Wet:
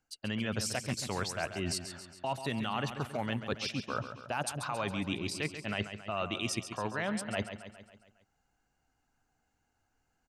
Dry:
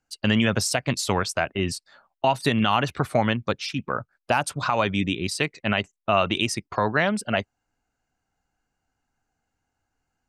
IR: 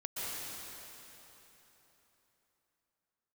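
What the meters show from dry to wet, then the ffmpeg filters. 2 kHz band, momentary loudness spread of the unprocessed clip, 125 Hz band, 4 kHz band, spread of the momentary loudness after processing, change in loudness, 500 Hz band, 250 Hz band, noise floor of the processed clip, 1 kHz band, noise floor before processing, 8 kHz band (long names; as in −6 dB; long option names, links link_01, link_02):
−11.5 dB, 7 LU, −10.0 dB, −10.0 dB, 4 LU, −11.0 dB, −12.0 dB, −11.0 dB, −79 dBFS, −12.5 dB, −81 dBFS, −7.5 dB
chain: -af "areverse,acompressor=threshold=-32dB:ratio=6,areverse,aecho=1:1:137|274|411|548|685|822:0.316|0.174|0.0957|0.0526|0.0289|0.0159"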